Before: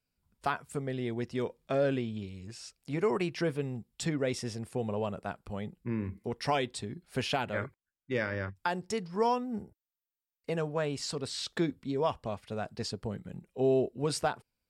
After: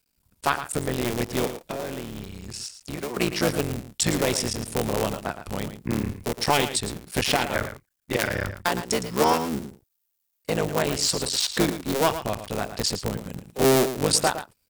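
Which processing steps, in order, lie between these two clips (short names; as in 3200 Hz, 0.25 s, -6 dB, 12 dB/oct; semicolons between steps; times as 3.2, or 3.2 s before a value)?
cycle switcher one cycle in 3, muted; high shelf 4300 Hz +11 dB; 1.62–3.17 compressor 3:1, threshold -41 dBFS, peak gain reduction 12.5 dB; echo 0.112 s -11 dB; gain +8.5 dB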